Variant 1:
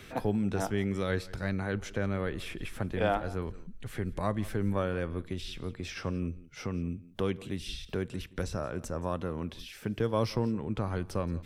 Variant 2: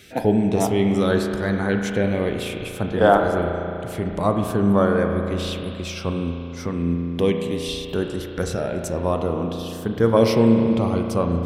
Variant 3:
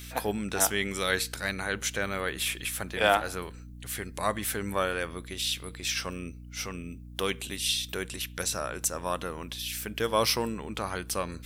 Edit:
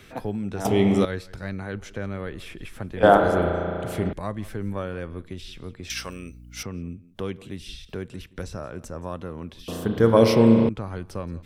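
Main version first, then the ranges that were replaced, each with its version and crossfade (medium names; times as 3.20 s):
1
0.65–1.05 s: from 2
3.03–4.13 s: from 2
5.90–6.63 s: from 3
9.68–10.69 s: from 2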